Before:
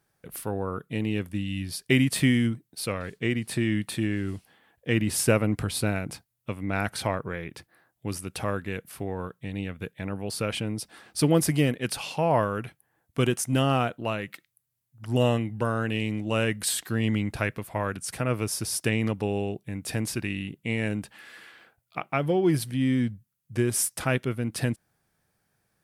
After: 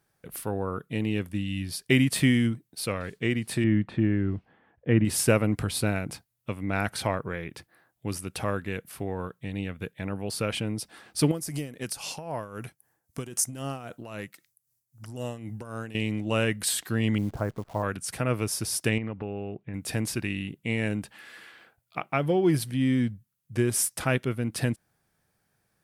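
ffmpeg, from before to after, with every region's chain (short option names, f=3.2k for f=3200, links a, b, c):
-filter_complex "[0:a]asettb=1/sr,asplit=3[a][b][c];[a]atrim=end=3.644[d];[b]atrim=start=3.64:end=5.05,asetpts=PTS-STARTPTS,afade=t=in:d=0.004:c=qsin,afade=t=out:st=1.406:d=0.004:c=qsin,lowpass=1.8k,lowshelf=f=400:g=4.5[e];[c]atrim=start=5.046[f];[d][e]acrossfade=d=0.004:c1=hsin:c2=qsin[g];[g][f]acrossfade=d=0.004:c1=qsin:c2=hsin,asettb=1/sr,asplit=3[h][i][j];[h]atrim=end=11.314[k];[i]atrim=start=11.31:end=15.95,asetpts=PTS-STARTPTS,afade=t=in:d=0.004:c=qsin,afade=t=out:st=4.636:d=0.004:c=qsin,acompressor=threshold=-28dB:ratio=4:attack=3.2:release=140:knee=1:detection=peak,tremolo=f=3.8:d=0.67,highshelf=f=4.4k:t=q:w=1.5:g=7[l];[j]atrim=start=15.946[m];[k][l]acrossfade=d=0.004:c1=hsin:c2=qsin[n];[n][m]acrossfade=d=0.004:c1=qsin:c2=hsin,asettb=1/sr,asplit=3[o][p][q];[o]atrim=end=17.184[r];[p]atrim=start=17.18:end=17.83,asetpts=PTS-STARTPTS,afade=t=in:d=0.004:c=qsin,afade=t=out:st=0.646:d=0.004:c=qsin,lowpass=f=1.2k:w=0.5412,lowpass=f=1.2k:w=1.3066,acrusher=bits=9:dc=4:mix=0:aa=0.000001[s];[q]atrim=start=17.826[t];[r][s]acrossfade=d=0.004:c1=hsin:c2=qsin[u];[u][t]acrossfade=d=0.004:c1=qsin:c2=hsin,asettb=1/sr,asplit=3[v][w][x];[v]atrim=end=18.984[y];[w]atrim=start=18.98:end=19.74,asetpts=PTS-STARTPTS,afade=t=in:d=0.004:c=qsin,afade=t=out:st=0.756:d=0.004:c=qsin,lowpass=f=2.6k:w=0.5412,lowpass=f=2.6k:w=1.3066,acompressor=threshold=-31dB:ratio=2.5:attack=3.2:release=140:knee=1:detection=peak[z];[x]atrim=start=19.736[aa];[y][z]acrossfade=d=0.004:c1=hsin:c2=qsin[ab];[ab][aa]acrossfade=d=0.004:c1=qsin:c2=hsin"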